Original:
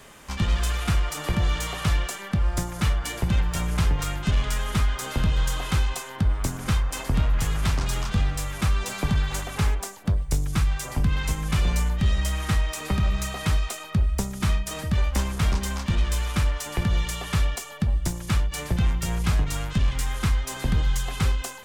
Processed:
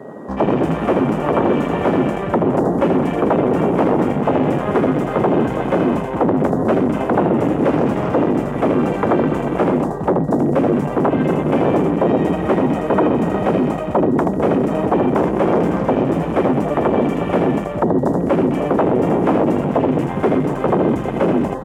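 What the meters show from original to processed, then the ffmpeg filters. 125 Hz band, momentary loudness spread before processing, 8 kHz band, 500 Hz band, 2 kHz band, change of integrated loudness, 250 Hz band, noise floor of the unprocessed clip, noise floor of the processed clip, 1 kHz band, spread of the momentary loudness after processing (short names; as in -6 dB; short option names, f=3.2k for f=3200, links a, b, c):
+1.5 dB, 3 LU, under -10 dB, +22.5 dB, +3.5 dB, +9.0 dB, +16.0 dB, -39 dBFS, -24 dBFS, +14.5 dB, 2 LU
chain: -filter_complex "[0:a]aecho=1:1:80|208|412.8|740.5|1265:0.631|0.398|0.251|0.158|0.1,acrossover=split=730|3000[a][b][c];[a]aeval=exprs='0.376*sin(PI/2*7.94*val(0)/0.376)':c=same[d];[d][b][c]amix=inputs=3:normalize=0,highpass=230,afwtdn=0.0224,aeval=exprs='val(0)+0.00282*sin(2*PI*1900*n/s)':c=same"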